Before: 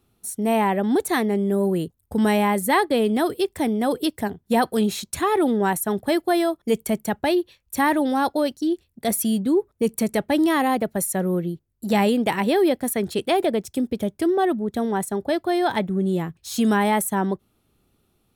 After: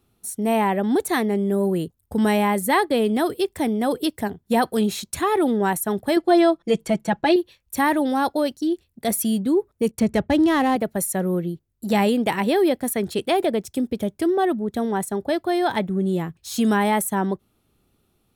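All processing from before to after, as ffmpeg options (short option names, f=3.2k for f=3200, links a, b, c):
-filter_complex "[0:a]asettb=1/sr,asplit=3[a][b][c];[a]atrim=end=6.164[d];[b]atrim=start=6.16:end=7.36,asetpts=PTS-STARTPTS,afade=t=in:d=0.004:c=qsin,afade=t=out:st=1.196:d=0.004:c=qsin,lowpass=6k,aecho=1:1:6:0.85,atrim=end_sample=52920[e];[c]atrim=start=7.356[f];[d][e]acrossfade=d=0.004:c1=hsin:c2=qsin[g];[g][f]acrossfade=d=0.004:c1=qsin:c2=hsin,asettb=1/sr,asplit=3[h][i][j];[h]atrim=end=9.914[k];[i]atrim=start=9.91:end=10.76,asetpts=PTS-STARTPTS,afade=t=in:d=0.004:c=qsin,afade=t=out:st=0.846:d=0.004:c=qsin,agate=range=-14dB:threshold=-44dB:ratio=16:release=100:detection=peak,equalizer=f=71:w=0.71:g=14,adynamicsmooth=sensitivity=5.5:basefreq=3.4k[l];[j]atrim=start=10.756[m];[k][l]acrossfade=d=0.004:c1=hsin:c2=qsin[n];[n][m]acrossfade=d=0.004:c1=qsin:c2=hsin"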